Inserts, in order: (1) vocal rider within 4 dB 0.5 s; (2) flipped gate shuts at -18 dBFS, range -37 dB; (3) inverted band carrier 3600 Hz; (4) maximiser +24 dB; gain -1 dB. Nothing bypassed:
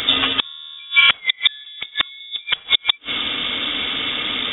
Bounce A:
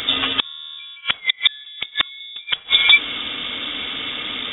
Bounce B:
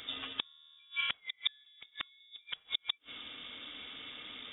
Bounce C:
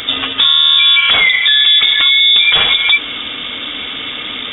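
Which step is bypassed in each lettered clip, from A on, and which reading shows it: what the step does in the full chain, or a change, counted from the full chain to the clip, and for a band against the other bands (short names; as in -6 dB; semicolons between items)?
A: 1, 2 kHz band +2.0 dB; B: 4, crest factor change +8.0 dB; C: 2, crest factor change -9.0 dB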